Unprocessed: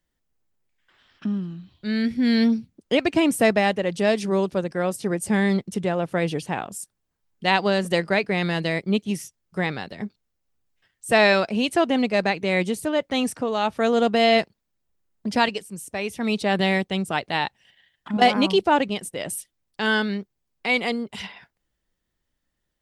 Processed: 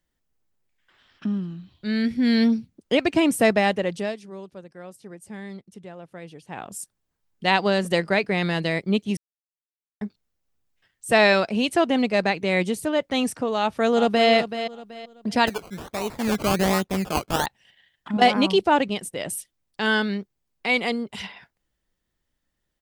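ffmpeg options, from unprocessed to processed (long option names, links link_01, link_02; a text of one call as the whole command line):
ffmpeg -i in.wav -filter_complex "[0:a]asplit=2[link_01][link_02];[link_02]afade=type=in:start_time=13.58:duration=0.01,afade=type=out:start_time=14.29:duration=0.01,aecho=0:1:380|760|1140:0.316228|0.0948683|0.0284605[link_03];[link_01][link_03]amix=inputs=2:normalize=0,asettb=1/sr,asplit=3[link_04][link_05][link_06];[link_04]atrim=end=15.474[link_07];[link_05]atrim=start=15.47:end=17.46,asetpts=PTS-STARTPTS,afade=type=in:duration=0.004:curve=qsin,afade=type=out:start_time=1.986:duration=0.004:curve=qsin,acrusher=samples=19:mix=1:aa=0.000001:lfo=1:lforange=11.4:lforate=1.3[link_08];[link_06]atrim=start=17.456[link_09];[link_07][link_08]acrossfade=duration=0.004:curve1=hsin:curve2=qsin[link_10];[link_10][link_09]acrossfade=duration=0.004:curve1=qsin:curve2=hsin,asplit=5[link_11][link_12][link_13][link_14][link_15];[link_11]atrim=end=4.18,asetpts=PTS-STARTPTS,afade=type=out:start_time=3.83:duration=0.35:silence=0.149624[link_16];[link_12]atrim=start=4.18:end=6.45,asetpts=PTS-STARTPTS,volume=-16.5dB[link_17];[link_13]atrim=start=6.45:end=9.17,asetpts=PTS-STARTPTS,afade=type=in:duration=0.35:silence=0.149624,afade=type=out:start_time=2.716:duration=0.004:curve=hsin[link_18];[link_14]atrim=start=9.17:end=10.01,asetpts=PTS-STARTPTS,volume=0[link_19];[link_15]atrim=start=10.01,asetpts=PTS-STARTPTS,afade=type=in:duration=0.004:curve=hsin[link_20];[link_16][link_17][link_18][link_19][link_20]concat=n=5:v=0:a=1" out.wav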